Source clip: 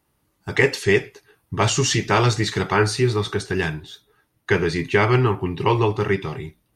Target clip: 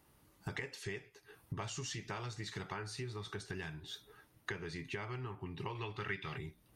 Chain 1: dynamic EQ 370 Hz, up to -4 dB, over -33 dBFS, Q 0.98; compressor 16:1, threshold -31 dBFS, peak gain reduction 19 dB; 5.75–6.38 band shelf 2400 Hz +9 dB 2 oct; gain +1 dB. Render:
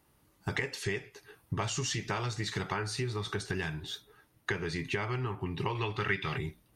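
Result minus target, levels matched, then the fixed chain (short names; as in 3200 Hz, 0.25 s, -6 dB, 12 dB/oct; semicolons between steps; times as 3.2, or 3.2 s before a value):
compressor: peak gain reduction -9 dB
dynamic EQ 370 Hz, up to -4 dB, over -33 dBFS, Q 0.98; compressor 16:1, threshold -40.5 dBFS, peak gain reduction 27.5 dB; 5.75–6.38 band shelf 2400 Hz +9 dB 2 oct; gain +1 dB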